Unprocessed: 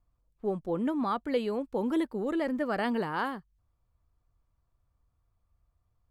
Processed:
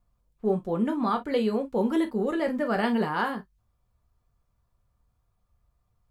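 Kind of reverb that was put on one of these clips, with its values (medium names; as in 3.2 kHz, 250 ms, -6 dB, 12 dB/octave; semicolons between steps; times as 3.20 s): gated-style reverb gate 80 ms falling, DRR 4 dB; trim +2.5 dB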